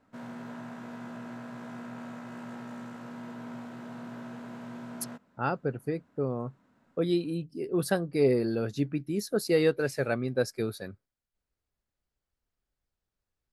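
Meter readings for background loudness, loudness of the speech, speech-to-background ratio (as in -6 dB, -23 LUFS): -42.5 LUFS, -30.0 LUFS, 12.5 dB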